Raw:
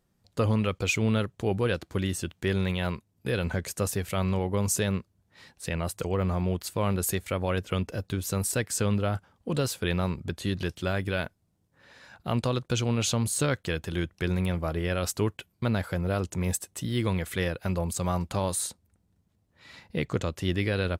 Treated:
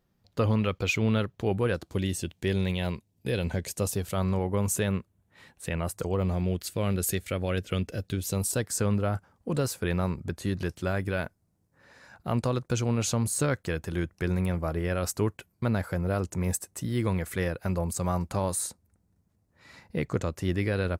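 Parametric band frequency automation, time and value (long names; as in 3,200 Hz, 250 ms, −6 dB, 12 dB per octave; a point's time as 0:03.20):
parametric band −8.5 dB 0.76 octaves
0:01.45 8,600 Hz
0:01.99 1,300 Hz
0:03.69 1,300 Hz
0:04.70 4,900 Hz
0:05.80 4,900 Hz
0:06.41 960 Hz
0:08.10 960 Hz
0:08.83 3,300 Hz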